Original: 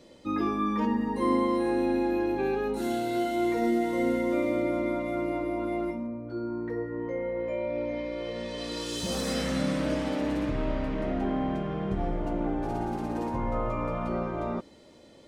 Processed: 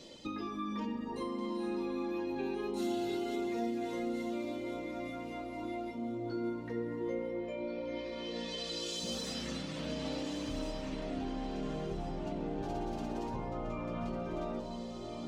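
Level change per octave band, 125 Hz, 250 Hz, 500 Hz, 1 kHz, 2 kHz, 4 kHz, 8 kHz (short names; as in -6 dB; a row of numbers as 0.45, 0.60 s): -8.5, -8.5, -8.5, -9.5, -9.0, -2.0, -5.0 dB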